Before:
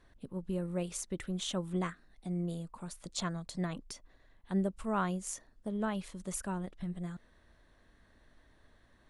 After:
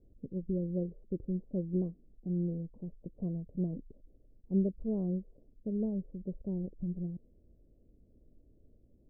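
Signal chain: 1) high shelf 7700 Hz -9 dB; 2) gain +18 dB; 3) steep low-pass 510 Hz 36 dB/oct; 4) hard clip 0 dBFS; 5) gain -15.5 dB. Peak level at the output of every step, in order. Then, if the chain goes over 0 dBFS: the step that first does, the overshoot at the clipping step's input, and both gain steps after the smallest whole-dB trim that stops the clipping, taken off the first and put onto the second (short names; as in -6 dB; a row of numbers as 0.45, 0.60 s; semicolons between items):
-21.0, -3.0, -4.0, -4.0, -19.5 dBFS; no overload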